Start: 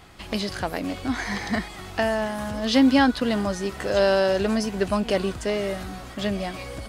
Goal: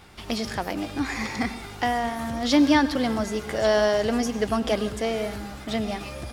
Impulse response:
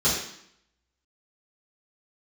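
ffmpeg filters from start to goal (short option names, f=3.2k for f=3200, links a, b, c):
-filter_complex "[0:a]asplit=2[a][b];[1:a]atrim=start_sample=2205,asetrate=38367,aresample=44100,adelay=96[c];[b][c]afir=irnorm=-1:irlink=0,volume=-31dB[d];[a][d]amix=inputs=2:normalize=0,asetrate=48000,aresample=44100,volume=-1dB"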